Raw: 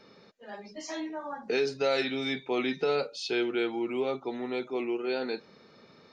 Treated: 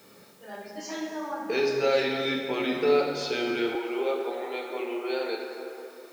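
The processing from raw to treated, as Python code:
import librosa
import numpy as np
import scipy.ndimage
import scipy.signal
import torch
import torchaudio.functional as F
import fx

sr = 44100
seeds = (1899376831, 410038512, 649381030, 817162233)

y = fx.rev_plate(x, sr, seeds[0], rt60_s=2.8, hf_ratio=0.5, predelay_ms=0, drr_db=-0.5)
y = fx.quant_dither(y, sr, seeds[1], bits=10, dither='triangular')
y = fx.highpass(y, sr, hz=fx.steps((0.0, 53.0), (3.75, 360.0)), slope=24)
y = fx.echo_feedback(y, sr, ms=344, feedback_pct=54, wet_db=-24.0)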